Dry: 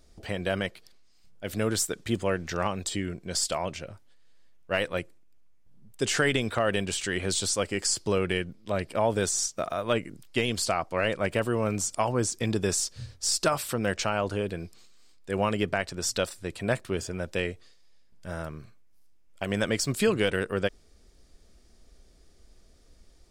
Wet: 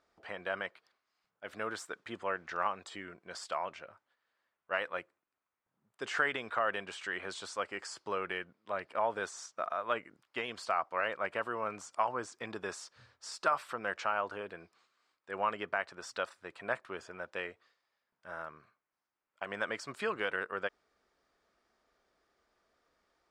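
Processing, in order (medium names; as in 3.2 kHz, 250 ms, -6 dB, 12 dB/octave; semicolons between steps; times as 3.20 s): band-pass filter 1.2 kHz, Q 1.6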